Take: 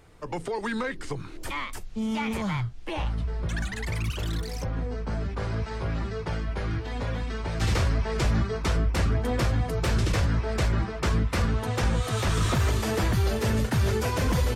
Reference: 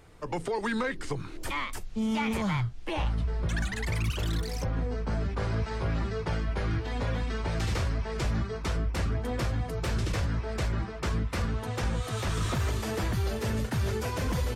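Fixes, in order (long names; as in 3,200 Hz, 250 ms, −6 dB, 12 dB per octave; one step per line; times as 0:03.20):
level 0 dB, from 0:07.61 −5 dB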